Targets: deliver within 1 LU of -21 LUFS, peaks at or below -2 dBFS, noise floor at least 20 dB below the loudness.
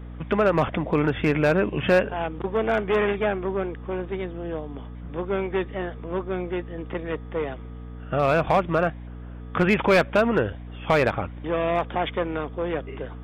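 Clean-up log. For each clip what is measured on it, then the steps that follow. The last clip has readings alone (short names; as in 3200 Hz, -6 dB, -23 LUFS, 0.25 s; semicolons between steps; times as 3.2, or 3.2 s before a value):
clipped 0.4%; flat tops at -12.0 dBFS; hum 60 Hz; harmonics up to 300 Hz; hum level -35 dBFS; loudness -24.5 LUFS; peak -12.0 dBFS; loudness target -21.0 LUFS
-> clip repair -12 dBFS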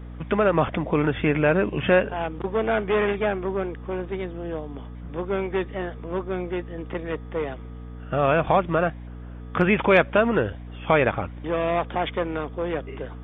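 clipped 0.0%; hum 60 Hz; harmonics up to 300 Hz; hum level -35 dBFS
-> notches 60/120/180/240/300 Hz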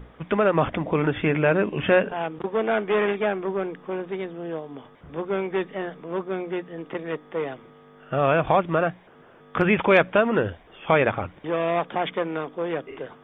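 hum none; loudness -24.5 LUFS; peak -4.5 dBFS; loudness target -21.0 LUFS
-> gain +3.5 dB; limiter -2 dBFS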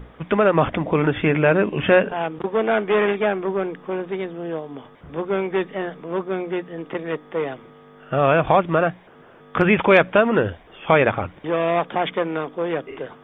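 loudness -21.0 LUFS; peak -2.0 dBFS; noise floor -48 dBFS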